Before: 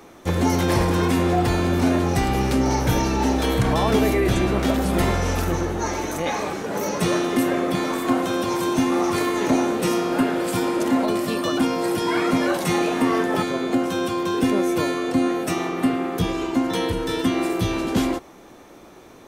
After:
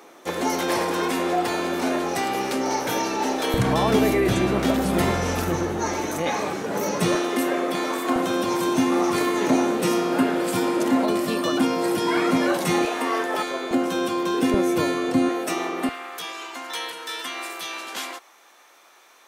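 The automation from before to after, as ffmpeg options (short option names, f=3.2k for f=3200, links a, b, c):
-af "asetnsamples=n=441:p=0,asendcmd='3.54 highpass f 100;7.15 highpass f 310;8.16 highpass f 140;12.85 highpass f 470;13.71 highpass f 200;14.54 highpass f 88;15.29 highpass f 330;15.89 highpass f 1100',highpass=360"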